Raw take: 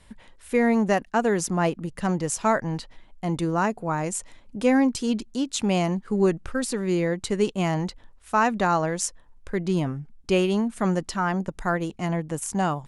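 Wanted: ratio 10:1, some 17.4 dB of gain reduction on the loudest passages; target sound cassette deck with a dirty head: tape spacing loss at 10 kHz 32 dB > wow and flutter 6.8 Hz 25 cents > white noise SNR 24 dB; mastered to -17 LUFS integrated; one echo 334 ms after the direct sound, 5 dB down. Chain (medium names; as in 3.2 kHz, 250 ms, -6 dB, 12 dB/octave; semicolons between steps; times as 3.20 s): compression 10:1, threshold -34 dBFS; tape spacing loss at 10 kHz 32 dB; delay 334 ms -5 dB; wow and flutter 6.8 Hz 25 cents; white noise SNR 24 dB; trim +22.5 dB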